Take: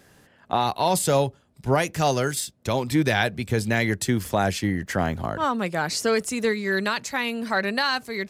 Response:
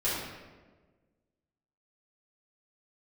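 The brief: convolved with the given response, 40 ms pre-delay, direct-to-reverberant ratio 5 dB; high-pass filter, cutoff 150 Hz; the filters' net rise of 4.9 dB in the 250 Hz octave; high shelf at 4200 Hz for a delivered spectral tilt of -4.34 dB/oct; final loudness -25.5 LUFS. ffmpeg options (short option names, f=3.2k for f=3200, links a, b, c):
-filter_complex "[0:a]highpass=150,equalizer=f=250:t=o:g=7,highshelf=f=4.2k:g=3.5,asplit=2[a][b];[1:a]atrim=start_sample=2205,adelay=40[c];[b][c]afir=irnorm=-1:irlink=0,volume=-14.5dB[d];[a][d]amix=inputs=2:normalize=0,volume=-4.5dB"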